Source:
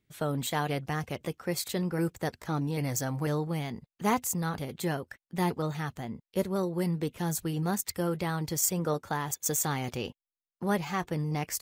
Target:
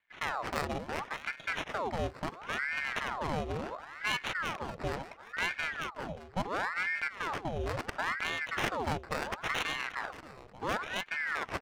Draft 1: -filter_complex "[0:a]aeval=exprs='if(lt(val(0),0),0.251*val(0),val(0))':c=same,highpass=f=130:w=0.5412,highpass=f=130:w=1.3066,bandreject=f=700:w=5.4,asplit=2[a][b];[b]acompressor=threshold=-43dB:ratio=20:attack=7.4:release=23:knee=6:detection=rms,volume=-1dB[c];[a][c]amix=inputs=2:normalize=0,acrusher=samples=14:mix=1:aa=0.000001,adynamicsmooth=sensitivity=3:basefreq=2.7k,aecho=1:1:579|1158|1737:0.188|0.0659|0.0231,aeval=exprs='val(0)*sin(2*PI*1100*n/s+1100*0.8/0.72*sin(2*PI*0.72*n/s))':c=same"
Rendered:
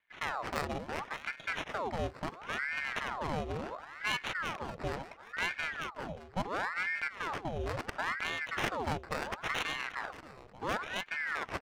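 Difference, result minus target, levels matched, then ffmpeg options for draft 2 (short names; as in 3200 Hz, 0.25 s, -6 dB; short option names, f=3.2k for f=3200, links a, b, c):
compressor: peak gain reduction +5.5 dB
-filter_complex "[0:a]aeval=exprs='if(lt(val(0),0),0.251*val(0),val(0))':c=same,highpass=f=130:w=0.5412,highpass=f=130:w=1.3066,bandreject=f=700:w=5.4,asplit=2[a][b];[b]acompressor=threshold=-37dB:ratio=20:attack=7.4:release=23:knee=6:detection=rms,volume=-1dB[c];[a][c]amix=inputs=2:normalize=0,acrusher=samples=14:mix=1:aa=0.000001,adynamicsmooth=sensitivity=3:basefreq=2.7k,aecho=1:1:579|1158|1737:0.188|0.0659|0.0231,aeval=exprs='val(0)*sin(2*PI*1100*n/s+1100*0.8/0.72*sin(2*PI*0.72*n/s))':c=same"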